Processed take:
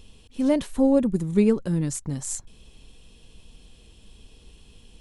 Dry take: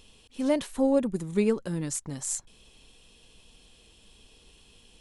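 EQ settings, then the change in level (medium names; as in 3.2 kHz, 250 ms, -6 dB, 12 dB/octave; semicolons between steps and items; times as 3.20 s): bass shelf 290 Hz +10.5 dB; 0.0 dB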